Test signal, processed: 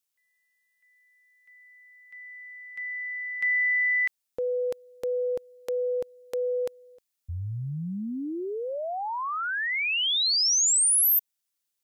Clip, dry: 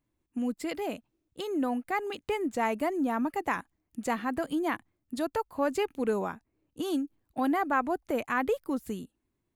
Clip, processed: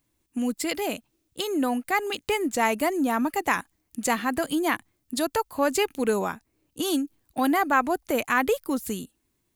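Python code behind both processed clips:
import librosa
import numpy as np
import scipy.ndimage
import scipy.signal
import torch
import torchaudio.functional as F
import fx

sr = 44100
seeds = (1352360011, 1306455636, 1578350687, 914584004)

y = fx.high_shelf(x, sr, hz=2700.0, db=11.5)
y = y * 10.0 ** (4.0 / 20.0)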